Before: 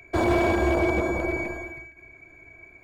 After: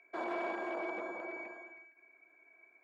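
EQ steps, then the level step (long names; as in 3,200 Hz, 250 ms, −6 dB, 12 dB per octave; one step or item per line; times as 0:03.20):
high-pass filter 190 Hz 24 dB per octave
low-pass filter 1,200 Hz 12 dB per octave
first difference
+7.5 dB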